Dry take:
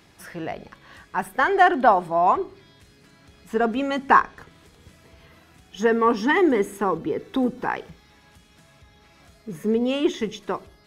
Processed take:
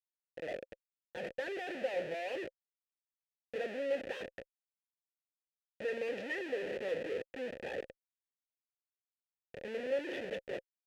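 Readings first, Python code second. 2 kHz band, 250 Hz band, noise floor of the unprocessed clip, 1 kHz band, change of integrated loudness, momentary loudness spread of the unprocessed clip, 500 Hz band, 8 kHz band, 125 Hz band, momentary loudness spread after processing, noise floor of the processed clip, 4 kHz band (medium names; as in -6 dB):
-16.5 dB, -22.5 dB, -55 dBFS, -29.0 dB, -17.5 dB, 16 LU, -13.0 dB, under -15 dB, -19.5 dB, 12 LU, under -85 dBFS, -13.5 dB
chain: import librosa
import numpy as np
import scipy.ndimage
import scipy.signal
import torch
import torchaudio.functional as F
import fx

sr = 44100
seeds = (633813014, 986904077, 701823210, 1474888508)

y = fx.transient(x, sr, attack_db=-4, sustain_db=7)
y = fx.schmitt(y, sr, flips_db=-28.5)
y = fx.vowel_filter(y, sr, vowel='e')
y = y * librosa.db_to_amplitude(-1.0)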